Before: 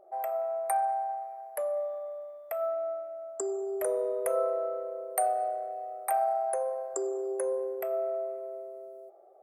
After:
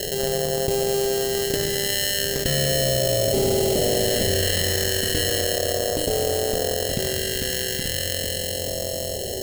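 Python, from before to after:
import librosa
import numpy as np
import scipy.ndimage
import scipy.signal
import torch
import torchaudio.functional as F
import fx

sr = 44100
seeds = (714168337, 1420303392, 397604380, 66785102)

p1 = fx.bin_compress(x, sr, power=0.4)
p2 = fx.doppler_pass(p1, sr, speed_mps=8, closest_m=4.1, pass_at_s=3.19)
p3 = fx.fold_sine(p2, sr, drive_db=12, ceiling_db=-15.0)
p4 = p2 + F.gain(torch.from_numpy(p3), -3.0).numpy()
p5 = fx.sample_hold(p4, sr, seeds[0], rate_hz=1200.0, jitter_pct=0)
p6 = p5 + fx.echo_single(p5, sr, ms=821, db=-8.0, dry=0)
p7 = fx.dynamic_eq(p6, sr, hz=670.0, q=1.0, threshold_db=-32.0, ratio=4.0, max_db=5)
p8 = fx.phaser_stages(p7, sr, stages=2, low_hz=680.0, high_hz=1400.0, hz=0.36, feedback_pct=30)
p9 = fx.cheby_harmonics(p8, sr, harmonics=(4, 7, 8), levels_db=(-35, -25, -44), full_scale_db=-15.5)
p10 = fx.peak_eq(p9, sr, hz=990.0, db=-8.5, octaves=2.2)
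p11 = fx.notch(p10, sr, hz=5800.0, q=11.0)
p12 = fx.env_flatten(p11, sr, amount_pct=70)
y = F.gain(torch.from_numpy(p12), 2.0).numpy()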